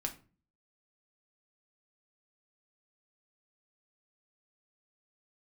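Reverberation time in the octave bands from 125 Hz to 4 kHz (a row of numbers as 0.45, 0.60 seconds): 0.60, 0.60, 0.40, 0.35, 0.30, 0.25 seconds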